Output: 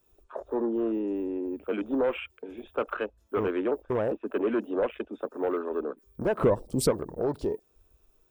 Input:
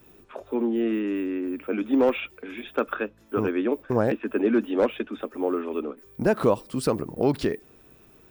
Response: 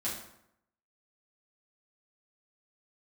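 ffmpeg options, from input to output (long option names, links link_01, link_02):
-filter_complex "[0:a]equalizer=frequency=125:width_type=o:width=1:gain=-8,equalizer=frequency=250:width_type=o:width=1:gain=-9,equalizer=frequency=2000:width_type=o:width=1:gain=-8,equalizer=frequency=8000:width_type=o:width=1:gain=4,alimiter=limit=-18dB:level=0:latency=1:release=427,bandreject=frequency=790:width=12,asoftclip=type=tanh:threshold=-24.5dB,asettb=1/sr,asplit=3[link_01][link_02][link_03];[link_01]atrim=end=6.384[link_04];[link_02]atrim=start=6.38:end=6.91,asetpts=PTS-STARTPTS,afade=type=in:duration=0.004:curve=qsin,afade=type=out:start_time=0.526:duration=0.004:curve=qsin,lowshelf=frequency=380:gain=11[link_05];[link_03]atrim=start=6.906[link_06];[link_04][link_05]acrossfade=duration=0.004:curve1=hsin:curve2=qsin[link_07];[link_07][link_06]acrossfade=duration=0.004:curve1=qsin:curve2=hsin,afwtdn=0.00631,volume=4.5dB"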